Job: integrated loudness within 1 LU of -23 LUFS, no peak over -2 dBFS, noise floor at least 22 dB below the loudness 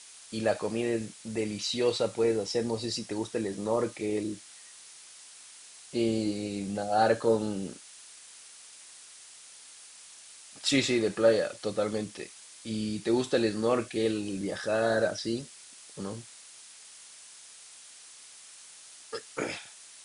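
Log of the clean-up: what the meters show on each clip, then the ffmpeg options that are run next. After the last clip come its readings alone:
noise floor -51 dBFS; noise floor target -52 dBFS; loudness -30.0 LUFS; peak -11.0 dBFS; loudness target -23.0 LUFS
-> -af "afftdn=nr=6:nf=-51"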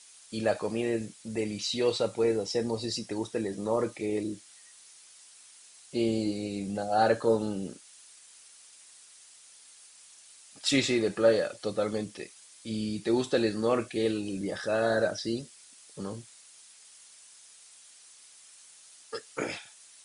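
noise floor -55 dBFS; loudness -30.0 LUFS; peak -11.0 dBFS; loudness target -23.0 LUFS
-> -af "volume=7dB"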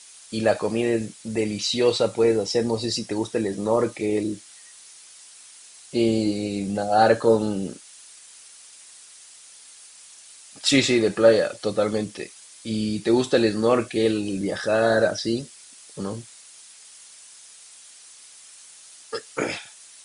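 loudness -23.0 LUFS; peak -4.0 dBFS; noise floor -48 dBFS

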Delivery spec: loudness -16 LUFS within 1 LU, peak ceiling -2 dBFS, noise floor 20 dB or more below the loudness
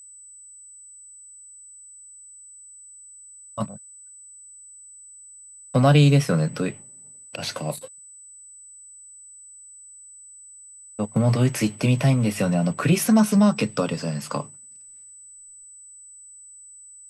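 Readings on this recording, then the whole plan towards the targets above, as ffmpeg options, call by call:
steady tone 8000 Hz; tone level -43 dBFS; loudness -22.0 LUFS; peak -6.5 dBFS; loudness target -16.0 LUFS
-> -af "bandreject=f=8k:w=30"
-af "volume=6dB,alimiter=limit=-2dB:level=0:latency=1"

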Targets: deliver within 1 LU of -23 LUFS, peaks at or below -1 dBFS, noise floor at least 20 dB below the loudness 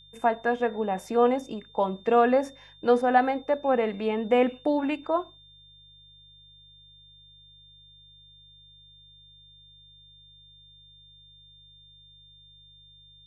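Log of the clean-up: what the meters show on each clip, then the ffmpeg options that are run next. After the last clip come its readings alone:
hum 50 Hz; harmonics up to 150 Hz; hum level -58 dBFS; steady tone 3600 Hz; tone level -52 dBFS; loudness -25.5 LUFS; peak -8.0 dBFS; loudness target -23.0 LUFS
-> -af "bandreject=f=50:t=h:w=4,bandreject=f=100:t=h:w=4,bandreject=f=150:t=h:w=4"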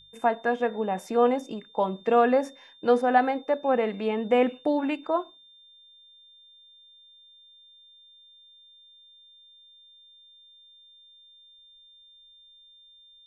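hum none; steady tone 3600 Hz; tone level -52 dBFS
-> -af "bandreject=f=3.6k:w=30"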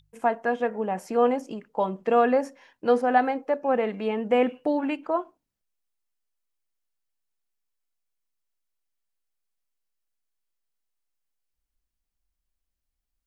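steady tone none; loudness -25.5 LUFS; peak -8.0 dBFS; loudness target -23.0 LUFS
-> -af "volume=2.5dB"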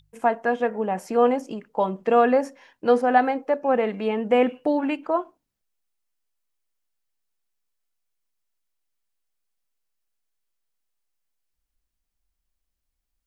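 loudness -23.0 LUFS; peak -5.5 dBFS; noise floor -80 dBFS

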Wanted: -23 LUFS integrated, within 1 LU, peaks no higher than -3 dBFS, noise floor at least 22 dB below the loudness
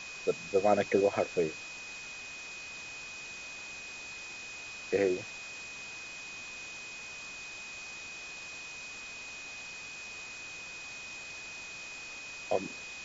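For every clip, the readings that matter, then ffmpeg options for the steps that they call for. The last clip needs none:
steady tone 2500 Hz; tone level -43 dBFS; noise floor -45 dBFS; noise floor target -59 dBFS; loudness -36.5 LUFS; peak -14.0 dBFS; loudness target -23.0 LUFS
-> -af "bandreject=f=2.5k:w=30"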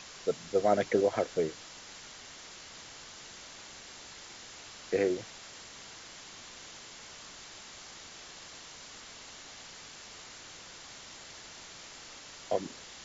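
steady tone none; noise floor -49 dBFS; noise floor target -60 dBFS
-> -af "afftdn=nr=11:nf=-49"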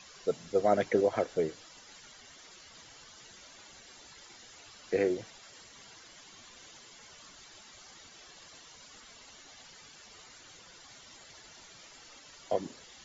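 noise floor -54 dBFS; loudness -31.0 LUFS; peak -14.0 dBFS; loudness target -23.0 LUFS
-> -af "volume=8dB"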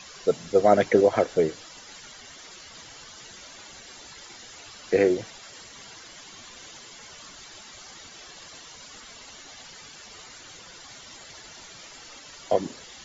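loudness -23.0 LUFS; peak -6.0 dBFS; noise floor -46 dBFS

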